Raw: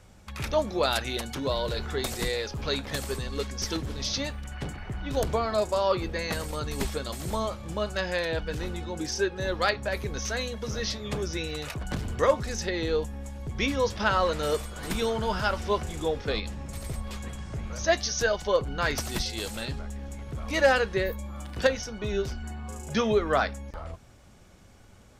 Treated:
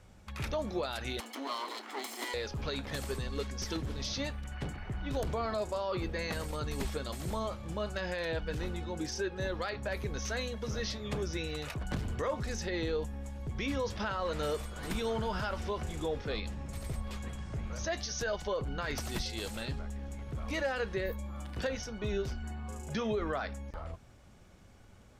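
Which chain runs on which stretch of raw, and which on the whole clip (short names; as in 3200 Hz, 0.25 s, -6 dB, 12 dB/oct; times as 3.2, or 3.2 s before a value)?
1.2–2.34 minimum comb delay 0.96 ms + brick-wall FIR high-pass 230 Hz
whole clip: limiter -21 dBFS; tone controls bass +1 dB, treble -3 dB; gain -4 dB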